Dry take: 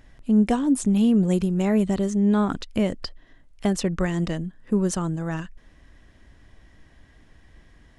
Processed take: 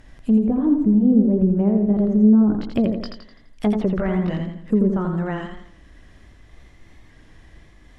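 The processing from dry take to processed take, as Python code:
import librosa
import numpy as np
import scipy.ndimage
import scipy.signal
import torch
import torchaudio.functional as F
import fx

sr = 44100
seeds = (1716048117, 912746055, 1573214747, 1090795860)

y = fx.pitch_ramps(x, sr, semitones=1.5, every_ms=1420)
y = fx.env_lowpass_down(y, sr, base_hz=480.0, full_db=-18.5)
y = fx.echo_warbled(y, sr, ms=84, feedback_pct=44, rate_hz=2.8, cents=55, wet_db=-5)
y = y * 10.0 ** (4.0 / 20.0)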